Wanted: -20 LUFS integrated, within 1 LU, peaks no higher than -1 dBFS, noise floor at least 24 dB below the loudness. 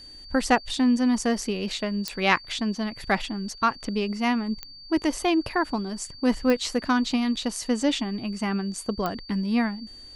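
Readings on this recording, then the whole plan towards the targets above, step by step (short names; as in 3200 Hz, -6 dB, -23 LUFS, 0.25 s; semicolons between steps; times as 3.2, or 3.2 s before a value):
clicks 4; steady tone 4600 Hz; tone level -43 dBFS; loudness -26.0 LUFS; peak -5.5 dBFS; loudness target -20.0 LUFS
-> de-click; notch 4600 Hz, Q 30; gain +6 dB; limiter -1 dBFS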